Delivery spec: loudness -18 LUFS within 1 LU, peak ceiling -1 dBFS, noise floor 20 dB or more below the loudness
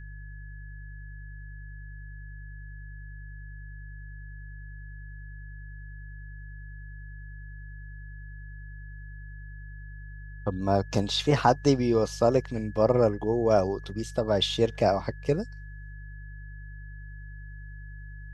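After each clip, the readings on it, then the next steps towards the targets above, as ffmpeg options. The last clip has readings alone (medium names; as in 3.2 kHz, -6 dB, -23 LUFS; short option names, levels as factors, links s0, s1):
hum 50 Hz; highest harmonic 150 Hz; hum level -39 dBFS; steady tone 1.7 kHz; tone level -50 dBFS; loudness -26.0 LUFS; peak level -6.5 dBFS; loudness target -18.0 LUFS
-> -af "bandreject=f=50:t=h:w=4,bandreject=f=100:t=h:w=4,bandreject=f=150:t=h:w=4"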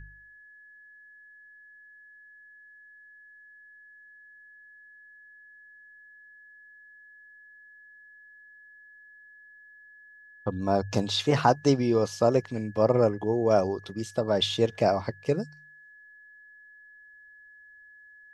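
hum not found; steady tone 1.7 kHz; tone level -50 dBFS
-> -af "bandreject=f=1700:w=30"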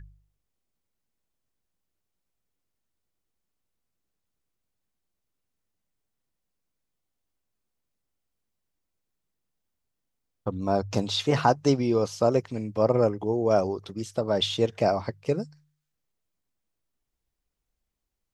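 steady tone not found; loudness -26.0 LUFS; peak level -6.5 dBFS; loudness target -18.0 LUFS
-> -af "volume=2.51,alimiter=limit=0.891:level=0:latency=1"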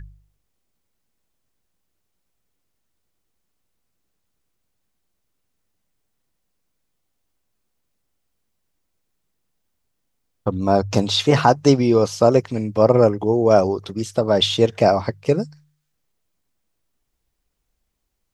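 loudness -18.0 LUFS; peak level -1.0 dBFS; noise floor -74 dBFS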